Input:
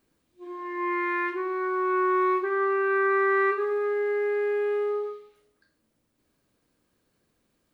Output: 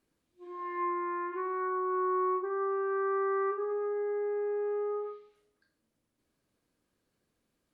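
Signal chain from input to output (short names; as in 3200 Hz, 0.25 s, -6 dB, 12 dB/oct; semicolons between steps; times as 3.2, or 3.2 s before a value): treble ducked by the level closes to 940 Hz, closed at -23 dBFS; dynamic EQ 1000 Hz, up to +6 dB, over -44 dBFS, Q 1.7; gain -6.5 dB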